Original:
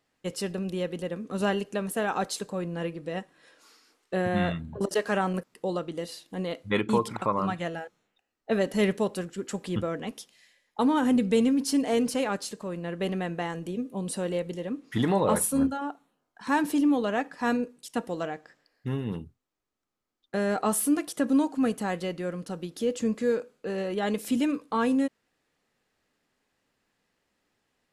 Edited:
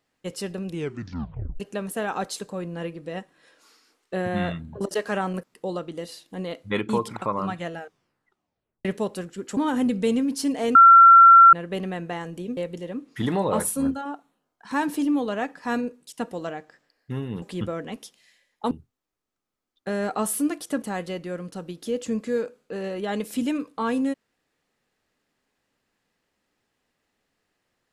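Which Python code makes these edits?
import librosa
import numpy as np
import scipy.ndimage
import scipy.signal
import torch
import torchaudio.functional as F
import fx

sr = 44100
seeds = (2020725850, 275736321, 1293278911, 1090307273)

y = fx.edit(x, sr, fx.tape_stop(start_s=0.68, length_s=0.92),
    fx.tape_stop(start_s=7.8, length_s=1.05),
    fx.move(start_s=9.57, length_s=1.29, to_s=19.18),
    fx.bleep(start_s=12.04, length_s=0.78, hz=1360.0, db=-7.0),
    fx.cut(start_s=13.86, length_s=0.47),
    fx.cut(start_s=21.29, length_s=0.47), tone=tone)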